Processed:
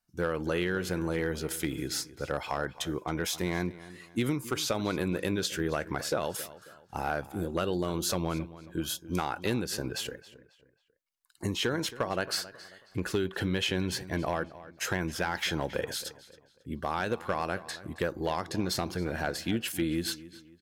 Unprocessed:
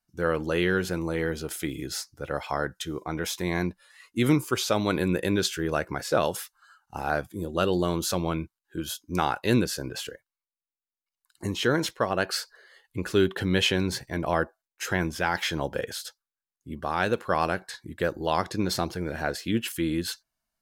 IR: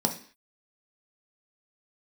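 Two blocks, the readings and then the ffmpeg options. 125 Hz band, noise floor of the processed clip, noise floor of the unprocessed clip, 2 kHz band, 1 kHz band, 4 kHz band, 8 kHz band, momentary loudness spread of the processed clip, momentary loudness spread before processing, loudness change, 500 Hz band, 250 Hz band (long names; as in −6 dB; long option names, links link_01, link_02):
−4.0 dB, −65 dBFS, below −85 dBFS, −4.5 dB, −5.0 dB, −3.0 dB, −1.5 dB, 7 LU, 11 LU, −4.5 dB, −5.0 dB, −4.5 dB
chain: -filter_complex "[0:a]acompressor=threshold=-25dB:ratio=16,asoftclip=type=hard:threshold=-19.5dB,asplit=2[link_01][link_02];[link_02]adelay=271,lowpass=frequency=4400:poles=1,volume=-16.5dB,asplit=2[link_03][link_04];[link_04]adelay=271,lowpass=frequency=4400:poles=1,volume=0.38,asplit=2[link_05][link_06];[link_06]adelay=271,lowpass=frequency=4400:poles=1,volume=0.38[link_07];[link_01][link_03][link_05][link_07]amix=inputs=4:normalize=0"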